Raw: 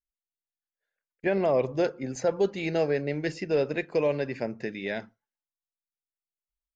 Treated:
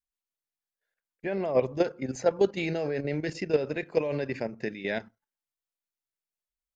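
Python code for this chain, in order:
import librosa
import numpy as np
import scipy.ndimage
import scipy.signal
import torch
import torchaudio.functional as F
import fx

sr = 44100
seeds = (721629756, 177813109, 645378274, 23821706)

y = fx.level_steps(x, sr, step_db=11)
y = y * 10.0 ** (3.5 / 20.0)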